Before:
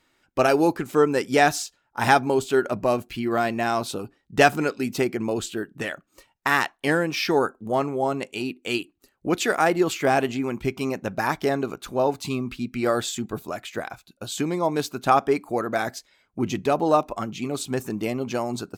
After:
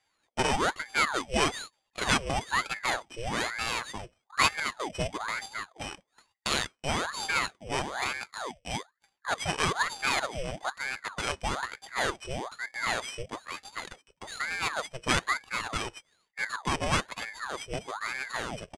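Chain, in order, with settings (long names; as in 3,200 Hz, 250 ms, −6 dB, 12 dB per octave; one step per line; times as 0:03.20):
samples sorted by size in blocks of 16 samples
downsampling to 22,050 Hz
ring modulator whose carrier an LFO sweeps 1,100 Hz, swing 80%, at 1.1 Hz
level −5 dB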